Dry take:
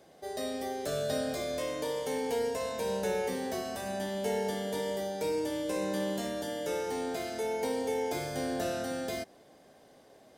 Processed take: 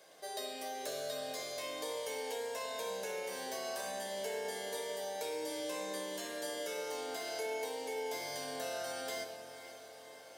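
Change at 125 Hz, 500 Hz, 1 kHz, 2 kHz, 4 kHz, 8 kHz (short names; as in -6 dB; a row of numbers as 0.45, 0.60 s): under -15 dB, -7.0 dB, -5.0 dB, -2.5 dB, -1.0 dB, -1.0 dB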